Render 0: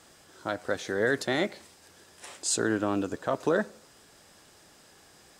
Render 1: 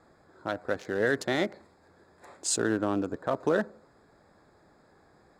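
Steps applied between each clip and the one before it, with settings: Wiener smoothing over 15 samples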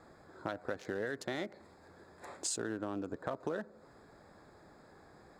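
compressor 6:1, threshold -37 dBFS, peak gain reduction 15 dB; gain +2 dB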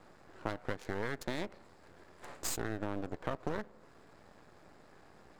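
half-wave rectifier; gain +3.5 dB

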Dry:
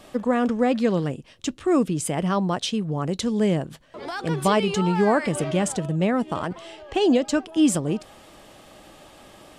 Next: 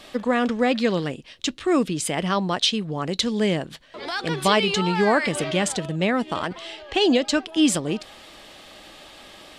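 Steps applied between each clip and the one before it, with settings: graphic EQ 125/2000/4000 Hz -5/+5/+9 dB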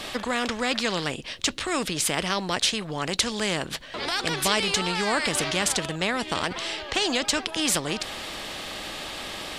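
spectral compressor 2:1; gain -2 dB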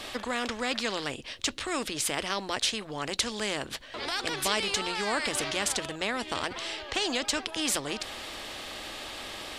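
bell 170 Hz -14.5 dB 0.23 oct; gain -4.5 dB

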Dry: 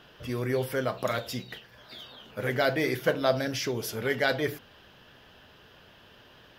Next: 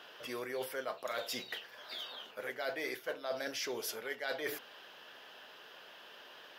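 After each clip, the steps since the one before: HPF 480 Hz 12 dB/oct; reverse; compressor 6:1, threshold -38 dBFS, peak gain reduction 16.5 dB; reverse; gain +2 dB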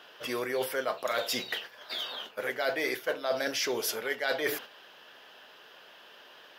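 gate -50 dBFS, range -7 dB; gain +8 dB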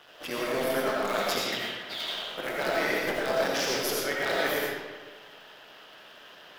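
cycle switcher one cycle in 3, muted; digital reverb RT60 1.4 s, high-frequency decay 0.7×, pre-delay 45 ms, DRR -3.5 dB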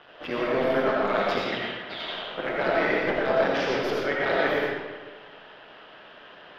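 air absorption 320 m; gain +5.5 dB

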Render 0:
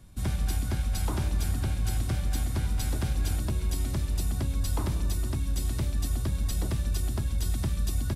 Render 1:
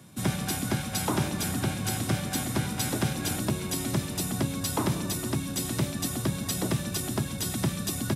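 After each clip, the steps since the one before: HPF 130 Hz 24 dB/oct; notch 4500 Hz, Q 16; gain +7.5 dB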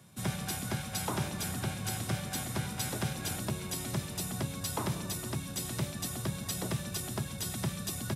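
bell 280 Hz -7.5 dB 0.59 oct; gain -5 dB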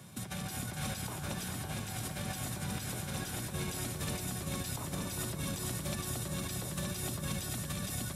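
negative-ratio compressor -41 dBFS, ratio -1; split-band echo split 1600 Hz, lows 0.402 s, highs 0.566 s, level -5.5 dB; gain +1 dB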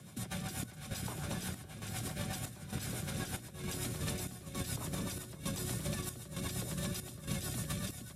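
rotary speaker horn 8 Hz; chopper 1.1 Hz, depth 65%, duty 70%; gain +1 dB

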